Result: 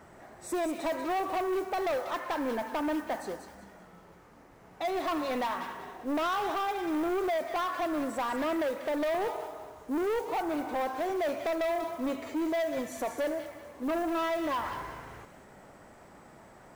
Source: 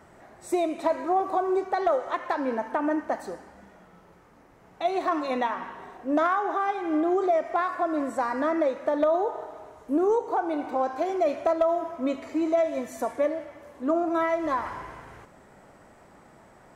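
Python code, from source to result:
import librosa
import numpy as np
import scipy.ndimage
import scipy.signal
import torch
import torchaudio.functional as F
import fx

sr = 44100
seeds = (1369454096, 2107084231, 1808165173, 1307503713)

y = fx.mod_noise(x, sr, seeds[0], snr_db=26)
y = 10.0 ** (-27.0 / 20.0) * np.tanh(y / 10.0 ** (-27.0 / 20.0))
y = fx.echo_wet_highpass(y, sr, ms=190, feedback_pct=30, hz=2600.0, wet_db=-6.0)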